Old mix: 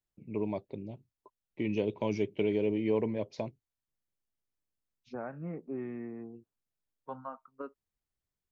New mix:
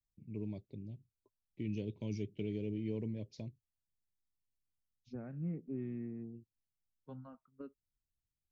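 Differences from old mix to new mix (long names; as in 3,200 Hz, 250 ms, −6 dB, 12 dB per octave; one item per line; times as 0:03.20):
second voice +5.5 dB
master: add drawn EQ curve 110 Hz 0 dB, 290 Hz −8 dB, 960 Hz −25 dB, 4,700 Hz −5 dB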